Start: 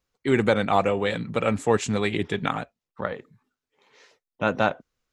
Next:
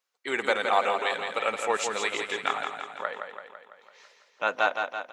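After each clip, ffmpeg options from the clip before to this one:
-filter_complex "[0:a]highpass=700,asplit=2[a][b];[b]aecho=0:1:167|334|501|668|835|1002|1169|1336:0.501|0.291|0.169|0.0978|0.0567|0.0329|0.0191|0.0111[c];[a][c]amix=inputs=2:normalize=0"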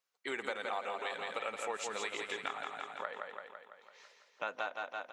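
-af "acompressor=threshold=-31dB:ratio=4,volume=-4.5dB"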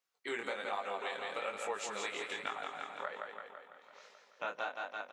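-filter_complex "[0:a]flanger=delay=19:depth=6.8:speed=1.2,asplit=2[a][b];[b]adelay=932.9,volume=-18dB,highshelf=f=4k:g=-21[c];[a][c]amix=inputs=2:normalize=0,volume=2.5dB"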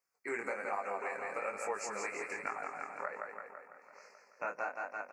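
-af "asuperstop=centerf=3400:order=8:qfactor=1.7,volume=1dB"

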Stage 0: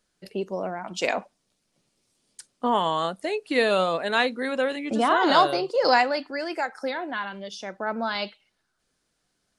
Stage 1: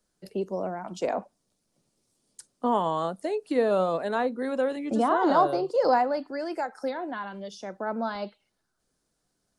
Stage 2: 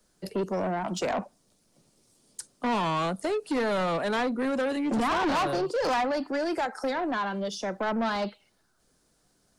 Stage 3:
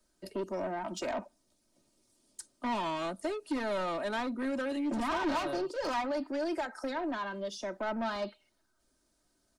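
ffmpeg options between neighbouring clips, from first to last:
-filter_complex "[0:a]acrossover=split=170|960|1500[a][b][c][d];[d]acompressor=threshold=-38dB:ratio=6[e];[a][b][c][e]amix=inputs=4:normalize=0,equalizer=f=2.5k:w=0.71:g=-8.5"
-filter_complex "[0:a]acrossover=split=310|870[a][b][c];[b]acompressor=threshold=-36dB:ratio=6[d];[a][d][c]amix=inputs=3:normalize=0,asoftclip=type=tanh:threshold=-32dB,volume=8.5dB"
-af "aecho=1:1:3.2:0.57,volume=-7.5dB"

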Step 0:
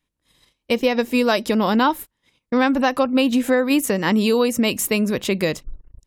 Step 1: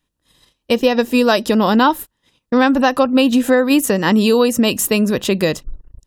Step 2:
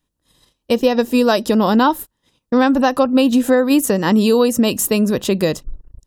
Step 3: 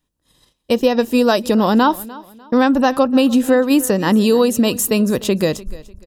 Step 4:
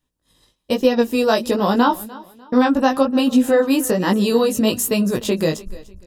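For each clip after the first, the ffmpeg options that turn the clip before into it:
-af "bandreject=f=2.2k:w=6.3,volume=4.5dB"
-af "equalizer=f=2.3k:w=0.9:g=-5"
-af "aecho=1:1:298|596|894:0.1|0.033|0.0109"
-af "flanger=delay=15.5:depth=3.5:speed=1.2,volume=1dB"

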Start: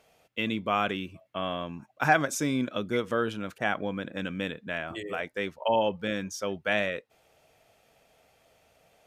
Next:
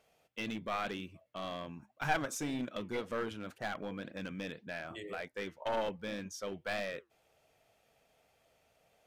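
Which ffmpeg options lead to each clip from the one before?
-af "flanger=delay=1.5:depth=6.1:regen=-80:speed=1.9:shape=sinusoidal,aeval=exprs='clip(val(0),-1,0.0299)':c=same,volume=-3dB"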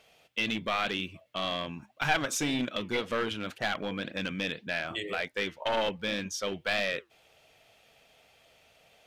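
-filter_complex "[0:a]equalizer=f=3.2k:w=0.87:g=8.5,asplit=2[a][b];[b]alimiter=level_in=2dB:limit=-24dB:level=0:latency=1:release=207,volume=-2dB,volume=0.5dB[c];[a][c]amix=inputs=2:normalize=0"

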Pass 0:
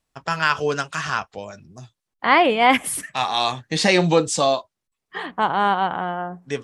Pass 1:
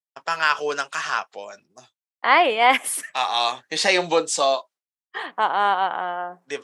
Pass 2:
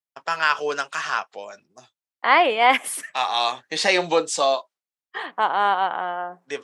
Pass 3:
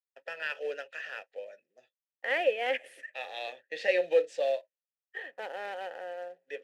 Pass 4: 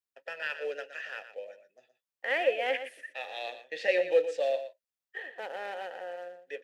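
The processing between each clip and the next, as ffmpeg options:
-af "agate=range=-33dB:threshold=-41dB:ratio=3:detection=peak,highpass=460"
-af "highshelf=f=6.9k:g=-4.5"
-filter_complex "[0:a]aeval=exprs='clip(val(0),-1,0.335)':c=same,acrusher=bits=3:mode=log:mix=0:aa=0.000001,asplit=3[a][b][c];[a]bandpass=f=530:t=q:w=8,volume=0dB[d];[b]bandpass=f=1.84k:t=q:w=8,volume=-6dB[e];[c]bandpass=f=2.48k:t=q:w=8,volume=-9dB[f];[d][e][f]amix=inputs=3:normalize=0"
-af "aecho=1:1:118:0.282"

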